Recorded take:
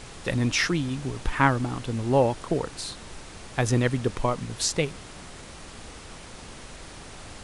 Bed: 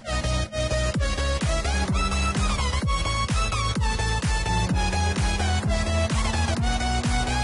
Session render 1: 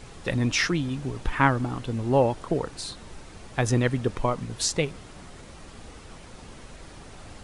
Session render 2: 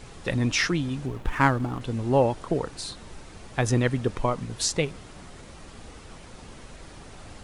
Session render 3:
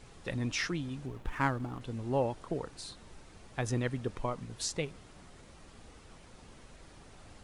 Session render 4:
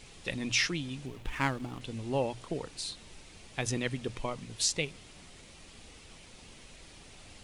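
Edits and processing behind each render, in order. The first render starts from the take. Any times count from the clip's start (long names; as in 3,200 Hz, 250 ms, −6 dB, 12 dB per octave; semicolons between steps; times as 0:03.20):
broadband denoise 6 dB, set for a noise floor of −44 dBFS
0:01.06–0:01.81: running median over 9 samples
level −9.5 dB
high shelf with overshoot 1,900 Hz +6.5 dB, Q 1.5; mains-hum notches 60/120 Hz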